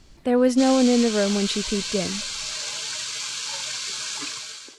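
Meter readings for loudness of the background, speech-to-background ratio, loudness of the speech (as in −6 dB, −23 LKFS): −28.0 LKFS, 6.5 dB, −21.5 LKFS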